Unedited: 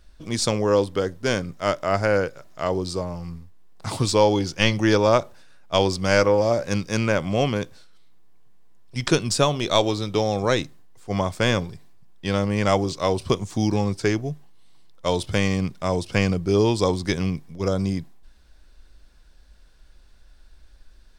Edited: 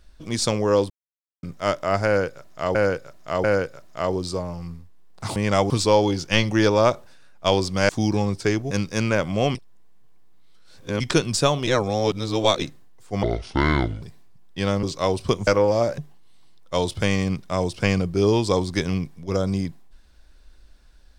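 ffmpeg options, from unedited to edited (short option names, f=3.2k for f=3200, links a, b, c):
-filter_complex "[0:a]asplit=18[a][b][c][d][e][f][g][h][i][j][k][l][m][n][o][p][q][r];[a]atrim=end=0.9,asetpts=PTS-STARTPTS,afade=t=out:st=0.896:d=0.004:c=hsin[s];[b]atrim=start=0.9:end=1.43,asetpts=PTS-STARTPTS,volume=0[t];[c]atrim=start=1.43:end=2.752,asetpts=PTS-STARTPTS,afade=t=in:d=0.004:c=hsin[u];[d]atrim=start=2.058:end=2.752[v];[e]atrim=start=2.058:end=3.982[w];[f]atrim=start=12.498:end=12.842[x];[g]atrim=start=3.978:end=6.172[y];[h]atrim=start=13.478:end=14.302[z];[i]atrim=start=6.678:end=7.522[aa];[j]atrim=start=7.518:end=8.972,asetpts=PTS-STARTPTS,areverse[ab];[k]atrim=start=8.968:end=9.642[ac];[l]atrim=start=9.638:end=10.592,asetpts=PTS-STARTPTS,areverse[ad];[m]atrim=start=10.588:end=11.204[ae];[n]atrim=start=11.2:end=11.69,asetpts=PTS-STARTPTS,asetrate=27342,aresample=44100,atrim=end_sample=34853,asetpts=PTS-STARTPTS[af];[o]atrim=start=11.686:end=12.502[ag];[p]atrim=start=12.838:end=13.482[ah];[q]atrim=start=6.168:end=6.682[ai];[r]atrim=start=14.298[aj];[s][t][u]concat=n=3:v=0:a=1[ak];[ak][v]acrossfade=d=0.004:c1=hsin:c2=hsin[al];[al][w]acrossfade=d=0.004:c1=hsin:c2=hsin[am];[am][x]acrossfade=d=0.004:c1=hsin:c2=hsin[an];[an][y]acrossfade=d=0.004:c1=hsin:c2=hsin[ao];[ao][z]acrossfade=d=0.004:c1=hsin:c2=hsin[ap];[ap][aa]acrossfade=d=0.004:c1=hsin:c2=hsin[aq];[aq][ab]acrossfade=d=0.004:c1=hsin:c2=hsin[ar];[ar][ac]acrossfade=d=0.004:c1=hsin:c2=hsin[as];[as][ad]acrossfade=d=0.004:c1=hsin:c2=hsin[at];[at][ae]acrossfade=d=0.004:c1=hsin:c2=hsin[au];[au][af]acrossfade=d=0.004:c1=hsin:c2=hsin[av];[av][ag]acrossfade=d=0.004:c1=hsin:c2=hsin[aw];[aw][ah]acrossfade=d=0.004:c1=hsin:c2=hsin[ax];[ax][ai]acrossfade=d=0.004:c1=hsin:c2=hsin[ay];[ay][aj]acrossfade=d=0.004:c1=hsin:c2=hsin"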